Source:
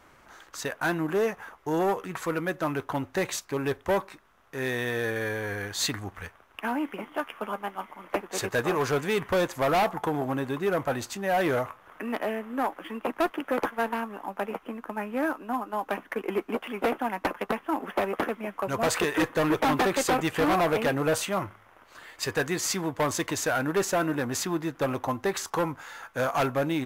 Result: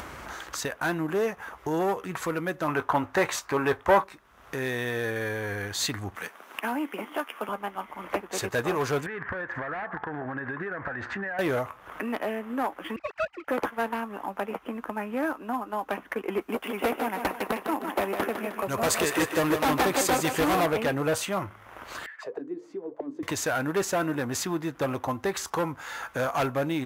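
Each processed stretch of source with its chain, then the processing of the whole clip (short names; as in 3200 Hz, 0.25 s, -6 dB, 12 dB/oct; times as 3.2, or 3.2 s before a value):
2.68–4.04 bell 1100 Hz +10 dB 2 oct + doubler 19 ms -12 dB
6.15–7.49 HPF 200 Hz 24 dB/oct + high shelf 5500 Hz +6 dB
9.06–11.39 synth low-pass 1700 Hz, resonance Q 7 + compressor 12:1, threshold -32 dBFS
12.96–13.48 sine-wave speech + tilt +3.5 dB/oct + power-law curve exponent 1.4
16.41–20.66 high shelf 6400 Hz +8.5 dB + thinning echo 0.155 s, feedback 46%, high-pass 200 Hz, level -7 dB
22.06–23.23 HPF 170 Hz 6 dB/oct + notches 50/100/150/200/250/300/350/400/450/500 Hz + auto-wah 280–2000 Hz, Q 8.9, down, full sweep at -24.5 dBFS
whole clip: HPF 40 Hz; bell 61 Hz +7.5 dB 0.73 oct; upward compressor, threshold -26 dBFS; gain -1 dB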